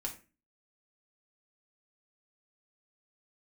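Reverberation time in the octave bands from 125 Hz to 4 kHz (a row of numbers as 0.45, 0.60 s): 0.45, 0.50, 0.40, 0.30, 0.35, 0.25 s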